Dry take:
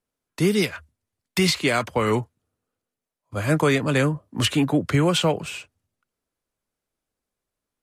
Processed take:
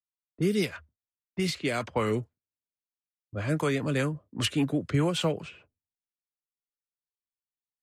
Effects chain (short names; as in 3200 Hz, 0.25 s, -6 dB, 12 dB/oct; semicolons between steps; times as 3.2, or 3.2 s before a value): gate with hold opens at -44 dBFS; rotary speaker horn 0.85 Hz, later 5 Hz, at 1.77; low-pass opened by the level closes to 340 Hz, open at -20.5 dBFS; gain -5 dB